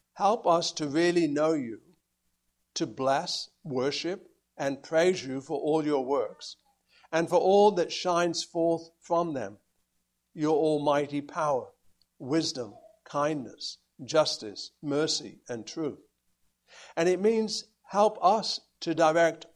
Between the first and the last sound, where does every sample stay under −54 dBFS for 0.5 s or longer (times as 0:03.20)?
0:01.94–0:02.76
0:09.57–0:10.35
0:16.03–0:16.69